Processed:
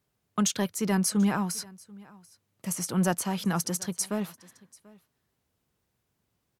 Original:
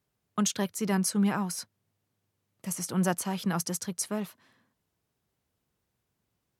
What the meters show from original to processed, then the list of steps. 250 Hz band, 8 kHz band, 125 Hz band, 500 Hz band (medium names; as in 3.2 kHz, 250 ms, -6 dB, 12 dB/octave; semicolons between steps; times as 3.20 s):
+2.0 dB, +2.0 dB, +2.0 dB, +1.5 dB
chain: in parallel at -10 dB: saturation -24.5 dBFS, distortion -12 dB; on the sum: delay 738 ms -23.5 dB